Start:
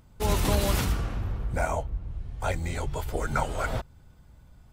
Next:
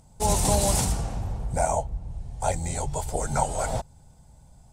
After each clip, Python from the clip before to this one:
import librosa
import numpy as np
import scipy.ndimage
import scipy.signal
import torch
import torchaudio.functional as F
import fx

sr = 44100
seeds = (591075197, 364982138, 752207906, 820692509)

y = fx.curve_eq(x, sr, hz=(100.0, 150.0, 340.0, 830.0, 1200.0, 3100.0, 8600.0, 14000.0), db=(0, 4, -3, 8, -6, -3, 14, -3))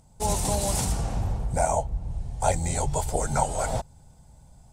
y = fx.rider(x, sr, range_db=4, speed_s=0.5)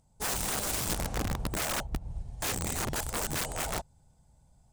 y = (np.mod(10.0 ** (21.0 / 20.0) * x + 1.0, 2.0) - 1.0) / 10.0 ** (21.0 / 20.0)
y = fx.upward_expand(y, sr, threshold_db=-37.0, expansion=1.5)
y = y * 10.0 ** (-4.0 / 20.0)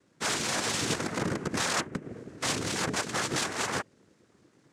y = fx.noise_vocoder(x, sr, seeds[0], bands=3)
y = y * 10.0 ** (4.5 / 20.0)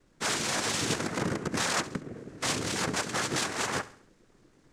y = fx.dmg_noise_colour(x, sr, seeds[1], colour='brown', level_db=-68.0)
y = fx.echo_feedback(y, sr, ms=68, feedback_pct=45, wet_db=-17)